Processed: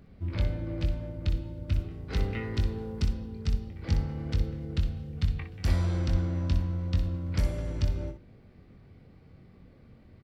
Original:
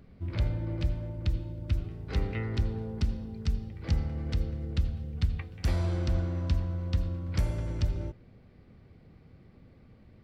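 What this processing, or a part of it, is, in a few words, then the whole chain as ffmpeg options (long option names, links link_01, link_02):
slapback doubling: -filter_complex "[0:a]asettb=1/sr,asplit=3[link_01][link_02][link_03];[link_01]atrim=end=2.114[link_04];[link_02]atrim=start=2.11:end=3.07,asetpts=PTS-STARTPTS,afade=type=in:duration=0.004:curve=qsin,afade=type=out:start_time=0.956:duration=0.004:curve=qsin,highshelf=frequency=5300:gain=5[link_05];[link_03]atrim=start=3.066[link_06];[link_04][link_05]acrossfade=duration=0.004:curve1=hsin:curve2=qsin[link_07];[link_07][link_06]acrossfade=duration=0.004:curve1=qsin:curve2=hsin,asplit=3[link_08][link_09][link_10];[link_09]adelay=22,volume=-7dB[link_11];[link_10]adelay=61,volume=-9dB[link_12];[link_08][link_11][link_12]amix=inputs=3:normalize=0"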